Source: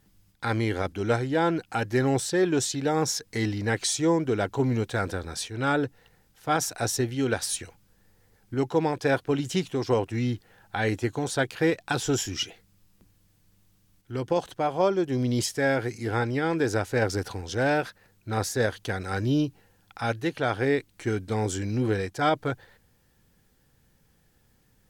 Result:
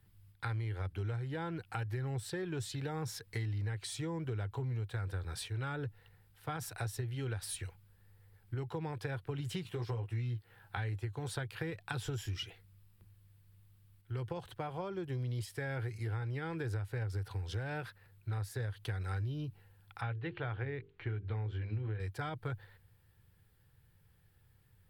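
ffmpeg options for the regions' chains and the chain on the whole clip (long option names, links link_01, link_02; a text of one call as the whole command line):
ffmpeg -i in.wav -filter_complex "[0:a]asettb=1/sr,asplit=3[link_01][link_02][link_03];[link_01]atrim=end=9.634[link_04];[link_02]atrim=start=9.63:end=10.77,asetpts=PTS-STARTPTS,afade=type=in:duration=0.004:curve=qsin,afade=type=out:start_time=1.136:duration=0.004:curve=qsin,lowshelf=frequency=72:gain=-8.5,asplit=2[link_05][link_06];[link_06]adelay=17,volume=-4dB[link_07];[link_05][link_07]amix=inputs=2:normalize=0,atrim=end_sample=50274[link_08];[link_03]atrim=start=10.766[link_09];[link_04][link_08]acrossfade=duration=0.004:curve1=hsin:curve2=qsin[link_10];[link_10][link_09]acrossfade=duration=0.004:curve1=qsin:curve2=hsin,asettb=1/sr,asplit=3[link_11][link_12][link_13];[link_11]atrim=end=20.014[link_14];[link_12]atrim=start=20.01:end=22,asetpts=PTS-STARTPTS,afade=type=in:duration=0.004:curve=qsin,afade=type=out:start_time=1.986:duration=0.004:curve=qsin,lowpass=frequency=3400:width=0.5412,lowpass=frequency=3400:width=1.3066,bandreject=frequency=50:width_type=h:width=6,bandreject=frequency=100:width_type=h:width=6,bandreject=frequency=150:width_type=h:width=6,bandreject=frequency=200:width_type=h:width=6,bandreject=frequency=250:width_type=h:width=6,bandreject=frequency=300:width_type=h:width=6,bandreject=frequency=350:width_type=h:width=6,bandreject=frequency=400:width_type=h:width=6,bandreject=frequency=450:width_type=h:width=6[link_15];[link_13]atrim=start=21.996[link_16];[link_14][link_15]acrossfade=duration=0.004:curve1=hsin:curve2=qsin[link_17];[link_17][link_16]acrossfade=duration=0.004:curve1=qsin:curve2=hsin,acrossover=split=210[link_18][link_19];[link_19]acompressor=threshold=-27dB:ratio=6[link_20];[link_18][link_20]amix=inputs=2:normalize=0,equalizer=frequency=100:width_type=o:width=0.67:gain=11,equalizer=frequency=250:width_type=o:width=0.67:gain=-12,equalizer=frequency=630:width_type=o:width=0.67:gain=-6,equalizer=frequency=6300:width_type=o:width=0.67:gain=-12,acompressor=threshold=-30dB:ratio=6,volume=-4.5dB" out.wav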